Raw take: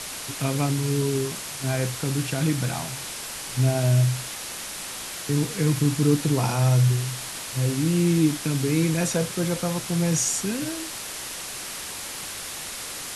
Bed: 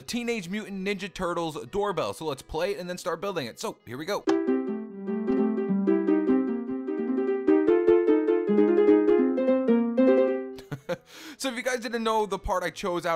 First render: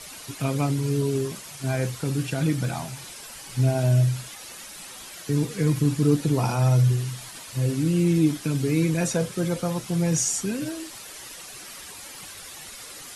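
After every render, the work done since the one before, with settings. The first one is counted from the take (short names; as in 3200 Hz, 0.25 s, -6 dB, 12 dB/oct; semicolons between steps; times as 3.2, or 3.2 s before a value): denoiser 10 dB, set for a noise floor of -35 dBFS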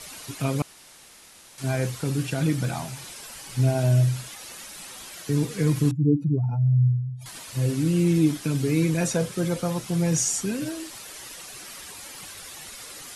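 0.62–1.58 room tone; 5.91–7.26 spectral contrast raised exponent 2.9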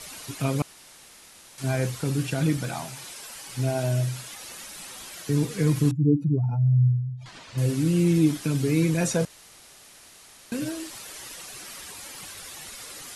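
2.57–4.3 low shelf 190 Hz -8.5 dB; 7.13–7.58 air absorption 130 m; 9.25–10.52 room tone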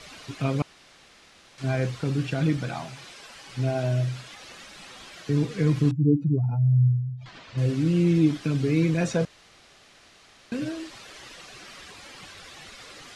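LPF 4400 Hz 12 dB/oct; notch 910 Hz, Q 16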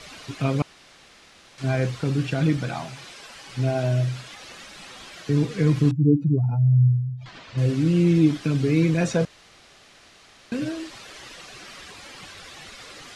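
gain +2.5 dB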